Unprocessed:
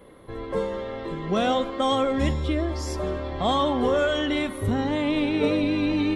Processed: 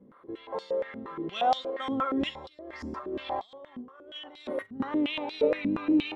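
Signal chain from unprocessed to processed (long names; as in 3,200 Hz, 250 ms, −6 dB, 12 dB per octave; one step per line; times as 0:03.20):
0:02.46–0:04.80: compressor whose output falls as the input rises −31 dBFS, ratio −0.5
band-pass on a step sequencer 8.5 Hz 220–4,500 Hz
level +5 dB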